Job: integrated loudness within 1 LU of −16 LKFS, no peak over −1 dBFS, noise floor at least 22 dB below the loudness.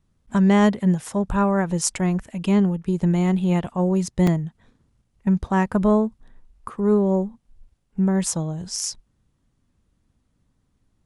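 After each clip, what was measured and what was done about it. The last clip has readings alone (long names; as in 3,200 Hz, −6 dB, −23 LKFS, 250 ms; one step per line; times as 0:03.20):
number of dropouts 1; longest dropout 3.4 ms; integrated loudness −21.5 LKFS; sample peak −5.5 dBFS; target loudness −16.0 LKFS
→ repair the gap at 0:04.27, 3.4 ms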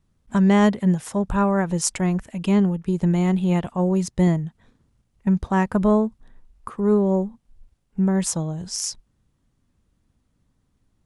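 number of dropouts 0; integrated loudness −21.5 LKFS; sample peak −5.5 dBFS; target loudness −16.0 LKFS
→ level +5.5 dB
brickwall limiter −1 dBFS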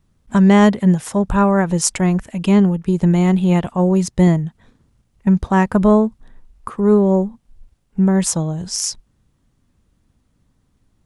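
integrated loudness −16.0 LKFS; sample peak −1.0 dBFS; background noise floor −64 dBFS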